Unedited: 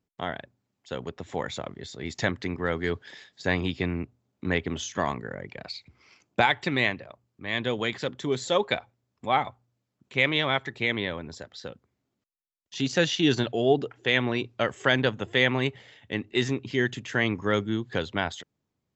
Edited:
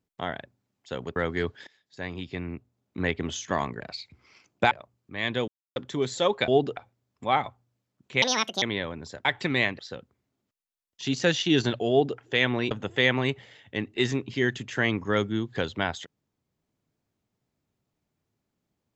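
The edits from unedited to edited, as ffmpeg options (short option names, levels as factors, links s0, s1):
-filter_complex "[0:a]asplit=14[s0][s1][s2][s3][s4][s5][s6][s7][s8][s9][s10][s11][s12][s13];[s0]atrim=end=1.162[s14];[s1]atrim=start=2.628:end=3.14,asetpts=PTS-STARTPTS,afade=t=out:st=0.508:d=0.004:c=hsin:silence=0.112202[s15];[s2]atrim=start=3.14:end=5.272,asetpts=PTS-STARTPTS,afade=t=in:d=1.57:silence=0.112202[s16];[s3]atrim=start=5.558:end=6.472[s17];[s4]atrim=start=7.008:end=7.78,asetpts=PTS-STARTPTS,afade=t=out:st=0.768:d=0.004:c=hsin[s18];[s5]atrim=start=7.78:end=8.06,asetpts=PTS-STARTPTS,volume=0[s19];[s6]atrim=start=8.06:end=8.782,asetpts=PTS-STARTPTS,afade=t=in:d=0.004:c=hsin[s20];[s7]atrim=start=13.628:end=13.922[s21];[s8]atrim=start=8.778:end=10.234[s22];[s9]atrim=start=10.23:end=10.89,asetpts=PTS-STARTPTS,asetrate=72765,aresample=44100[s23];[s10]atrim=start=10.886:end=11.522[s24];[s11]atrim=start=6.468:end=7.012[s25];[s12]atrim=start=11.518:end=14.442[s26];[s13]atrim=start=15.078[s27];[s15][s16]concat=n=2:v=0:a=1[s28];[s14][s28]acrossfade=d=0.004:c1=hsin:c2=hsin[s29];[s29][s17]acrossfade=d=0.004:c1=hsin:c2=hsin[s30];[s18][s19][s20]concat=n=3:v=0:a=1[s31];[s30][s31]acrossfade=d=0.004:c1=hsin:c2=hsin[s32];[s32][s21]acrossfade=d=0.004:c1=hsin:c2=hsin[s33];[s33][s22]acrossfade=d=0.004:c1=hsin:c2=hsin[s34];[s34][s23]acrossfade=d=0.004:c1=hsin:c2=hsin[s35];[s35][s24]acrossfade=d=0.004:c1=hsin:c2=hsin[s36];[s36][s25]acrossfade=d=0.004:c1=hsin:c2=hsin[s37];[s37][s26]acrossfade=d=0.004:c1=hsin:c2=hsin[s38];[s38][s27]acrossfade=d=0.004:c1=hsin:c2=hsin"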